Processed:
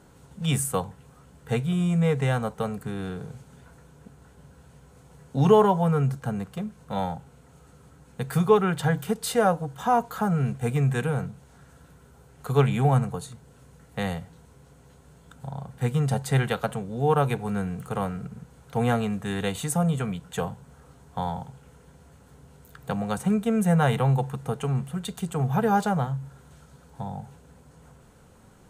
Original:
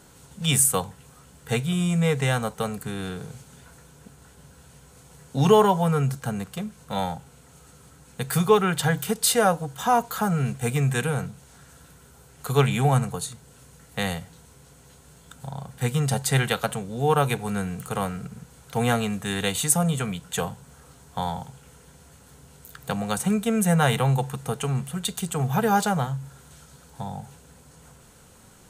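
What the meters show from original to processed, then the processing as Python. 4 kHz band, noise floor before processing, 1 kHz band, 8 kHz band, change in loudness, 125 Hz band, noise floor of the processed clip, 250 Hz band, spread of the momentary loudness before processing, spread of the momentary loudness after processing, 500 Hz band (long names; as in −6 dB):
−8.0 dB, −52 dBFS, −1.5 dB, −10.5 dB, −1.5 dB, 0.0 dB, −54 dBFS, 0.0 dB, 16 LU, 16 LU, −0.5 dB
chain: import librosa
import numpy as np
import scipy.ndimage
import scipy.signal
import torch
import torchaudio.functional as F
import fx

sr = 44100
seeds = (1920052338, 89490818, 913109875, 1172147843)

y = fx.high_shelf(x, sr, hz=2200.0, db=-11.0)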